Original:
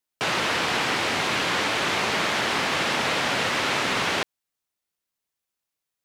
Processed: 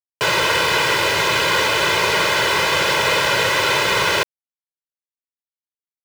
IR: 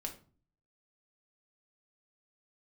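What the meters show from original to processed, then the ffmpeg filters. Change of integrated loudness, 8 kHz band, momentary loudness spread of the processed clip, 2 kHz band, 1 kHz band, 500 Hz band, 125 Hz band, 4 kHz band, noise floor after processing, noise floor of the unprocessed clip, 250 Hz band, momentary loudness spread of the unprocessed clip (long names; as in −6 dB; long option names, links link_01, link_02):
+7.0 dB, +7.5 dB, 1 LU, +7.0 dB, +6.5 dB, +8.0 dB, +6.0 dB, +7.0 dB, below −85 dBFS, −85 dBFS, +1.0 dB, 1 LU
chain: -af "aecho=1:1:2:0.85,acrusher=bits=5:mix=0:aa=0.000001,volume=4.5dB"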